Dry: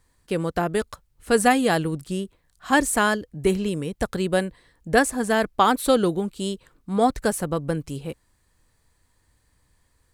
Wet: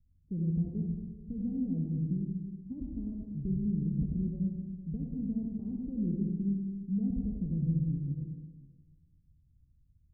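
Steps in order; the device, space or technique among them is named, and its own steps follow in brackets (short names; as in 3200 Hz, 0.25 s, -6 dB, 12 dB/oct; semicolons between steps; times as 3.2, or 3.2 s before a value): club heard from the street (limiter -14 dBFS, peak gain reduction 11.5 dB; LPF 210 Hz 24 dB/oct; reverb RT60 1.4 s, pre-delay 57 ms, DRR 0 dB); gain -3 dB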